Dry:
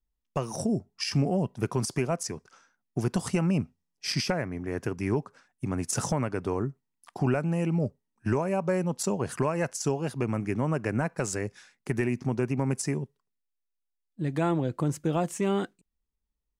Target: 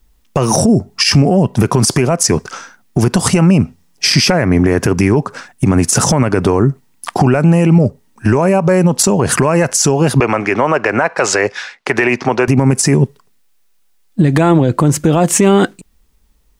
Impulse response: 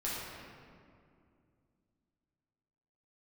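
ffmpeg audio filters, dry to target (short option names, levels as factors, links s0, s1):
-filter_complex "[0:a]asettb=1/sr,asplit=3[s0][s1][s2];[s0]atrim=end=10.204[s3];[s1]atrim=start=10.2:end=12.48,asetpts=PTS-STARTPTS,afade=t=in:d=0.004:c=qsin,afade=t=out:st=2.276:d=0.004:c=qsin,acrossover=split=440 5300:gain=0.0891 1 0.0891[s4][s5][s6];[s4][s5][s6]amix=inputs=3:normalize=0[s7];[s2]atrim=start=12.476[s8];[s3][s7]acrossfade=d=0.004:c1=hsin:c2=qsin[s9];[s9][s8]acrossfade=d=0.004:c1=qsin:c2=hsin,acompressor=threshold=0.0251:ratio=5,alimiter=level_in=29.9:limit=0.891:release=50:level=0:latency=1,volume=0.891"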